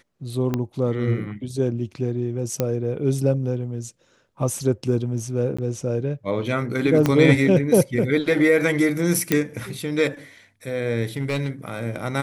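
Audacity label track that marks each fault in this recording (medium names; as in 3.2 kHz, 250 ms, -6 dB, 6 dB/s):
0.540000	0.540000	pop -11 dBFS
2.600000	2.600000	pop -8 dBFS
5.570000	5.580000	dropout 15 ms
7.060000	7.060000	pop -6 dBFS
9.320000	9.320000	pop -4 dBFS
11.170000	11.500000	clipped -18.5 dBFS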